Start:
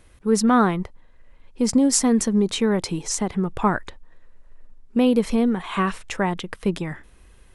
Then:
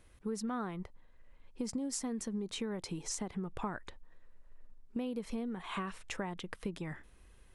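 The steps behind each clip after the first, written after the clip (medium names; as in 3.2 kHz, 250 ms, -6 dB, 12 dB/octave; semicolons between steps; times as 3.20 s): compression 6:1, threshold -26 dBFS, peak gain reduction 12.5 dB; trim -9 dB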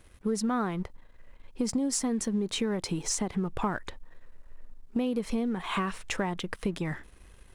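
waveshaping leveller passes 1; trim +5 dB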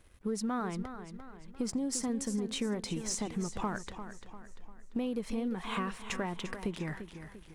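modulated delay 346 ms, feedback 46%, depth 60 cents, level -10.5 dB; trim -5 dB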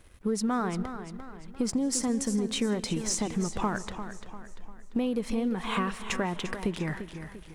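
reverberation RT60 1.2 s, pre-delay 110 ms, DRR 19.5 dB; trim +5.5 dB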